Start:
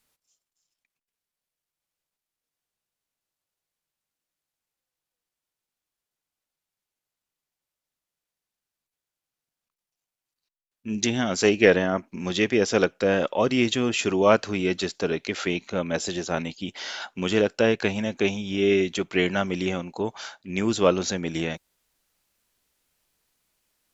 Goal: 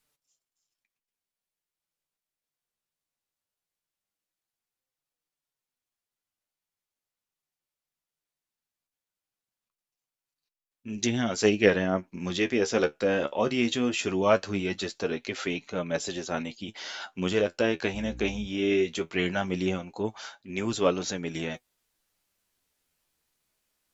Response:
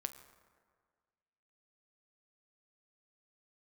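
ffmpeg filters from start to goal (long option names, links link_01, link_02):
-filter_complex "[0:a]asettb=1/sr,asplit=3[link_01][link_02][link_03];[link_01]atrim=end=17.944[link_04];[link_02]atrim=start=17.94:end=18.47,asetpts=PTS-STARTPTS,afade=type=in:duration=0.004:curve=qsin,afade=type=out:start_time=0.526:duration=0.004:curve=qsin,aeval=exprs='val(0)+0.0178*(sin(2*PI*60*n/s)+sin(2*PI*2*60*n/s)/2+sin(2*PI*3*60*n/s)/3+sin(2*PI*4*60*n/s)/4+sin(2*PI*5*60*n/s)/5)':channel_layout=same[link_05];[link_03]atrim=start=18.466[link_06];[link_04][link_05]acrossfade=duration=0.004:curve1=hsin:curve2=qsin[link_07];[link_07][link_06]acrossfade=duration=0.004:curve1=qsin:curve2=hsin,flanger=delay=6.5:depth=7.7:regen=44:speed=0.19:shape=triangular"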